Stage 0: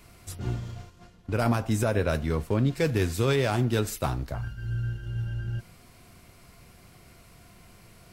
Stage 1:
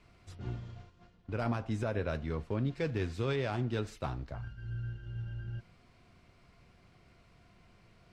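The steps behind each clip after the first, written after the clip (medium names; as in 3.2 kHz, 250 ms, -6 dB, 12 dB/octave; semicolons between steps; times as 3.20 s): low-pass 4.3 kHz 12 dB/octave; trim -8.5 dB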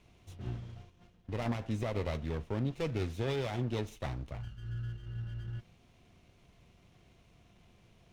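comb filter that takes the minimum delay 0.32 ms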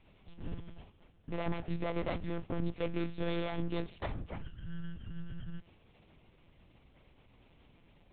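monotone LPC vocoder at 8 kHz 170 Hz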